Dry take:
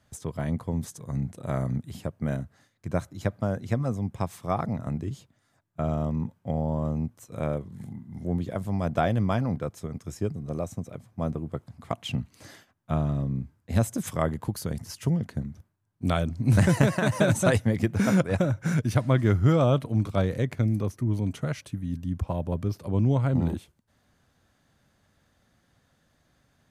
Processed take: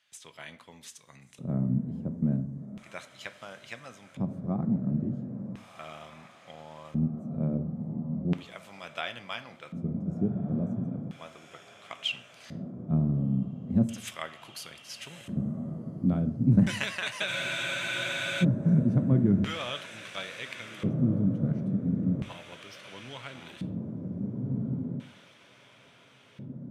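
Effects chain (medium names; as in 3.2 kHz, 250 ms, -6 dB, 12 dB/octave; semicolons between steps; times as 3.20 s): echo that smears into a reverb 1465 ms, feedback 55%, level -9 dB; LFO band-pass square 0.36 Hz 210–2800 Hz; treble shelf 6.2 kHz +9.5 dB; on a send at -10.5 dB: reverberation RT60 0.65 s, pre-delay 4 ms; on the sum: spectral freeze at 17.31 s, 1.12 s; trim +5.5 dB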